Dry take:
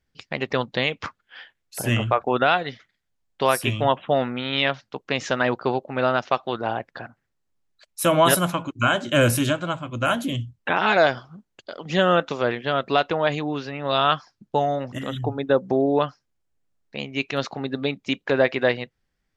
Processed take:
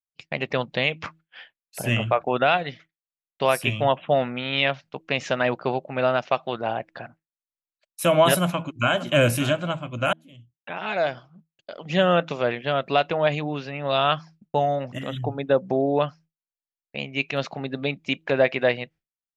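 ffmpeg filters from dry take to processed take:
ffmpeg -i in.wav -filter_complex "[0:a]asplit=2[link_01][link_02];[link_02]afade=type=in:start_time=8.39:duration=0.01,afade=type=out:start_time=9.13:duration=0.01,aecho=0:1:580|1160:0.199526|0.0299289[link_03];[link_01][link_03]amix=inputs=2:normalize=0,asplit=2[link_04][link_05];[link_04]atrim=end=10.13,asetpts=PTS-STARTPTS,afade=type=out:start_time=10.126:duration=0.004:curve=hsin[link_06];[link_05]atrim=start=10.13,asetpts=PTS-STARTPTS,afade=type=in:duration=1.89[link_07];[link_06][link_07]concat=n=2:v=0:a=1,bandreject=frequency=160.9:width_type=h:width=4,bandreject=frequency=321.8:width_type=h:width=4,agate=range=-33dB:threshold=-42dB:ratio=3:detection=peak,equalizer=frequency=160:width_type=o:width=0.67:gain=7,equalizer=frequency=630:width_type=o:width=0.67:gain=6,equalizer=frequency=2500:width_type=o:width=0.67:gain=7,volume=-4.5dB" out.wav

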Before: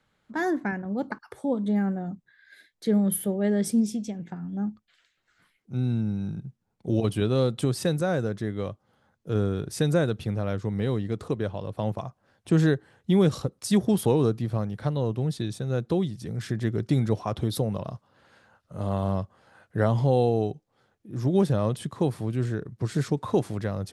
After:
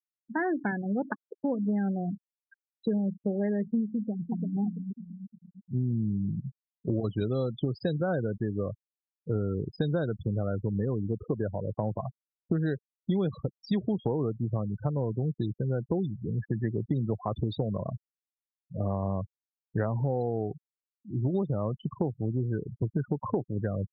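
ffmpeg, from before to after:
ffmpeg -i in.wav -filter_complex "[0:a]asplit=2[link_01][link_02];[link_02]afade=type=in:start_time=3.95:duration=0.01,afade=type=out:start_time=4.58:duration=0.01,aecho=0:1:340|680|1020|1360|1700|2040:0.595662|0.297831|0.148916|0.0744578|0.0372289|0.0186144[link_03];[link_01][link_03]amix=inputs=2:normalize=0,asettb=1/sr,asplit=3[link_04][link_05][link_06];[link_04]atrim=end=16.464[link_07];[link_05]atrim=start=16.46:end=17.18,asetpts=PTS-STARTPTS,afade=type=in:duration=0.004:curve=qsin,afade=type=out:start_time=0.716:duration=0.004:curve=qsin,highpass=frequency=85:width=0.5412,highpass=frequency=85:width=1.3066[link_08];[link_06]atrim=start=17.176[link_09];[link_07][link_08]acrossfade=duration=0.004:curve1=hsin:curve2=qsin[link_10];[link_10][link_09]acrossfade=duration=0.004:curve1=qsin:curve2=hsin,acrossover=split=5400[link_11][link_12];[link_12]acompressor=threshold=-53dB:ratio=4:attack=1:release=60[link_13];[link_11][link_13]amix=inputs=2:normalize=0,afftfilt=real='re*gte(hypot(re,im),0.0398)':imag='im*gte(hypot(re,im),0.0398)':win_size=1024:overlap=0.75,acompressor=threshold=-27dB:ratio=6,volume=2dB" out.wav

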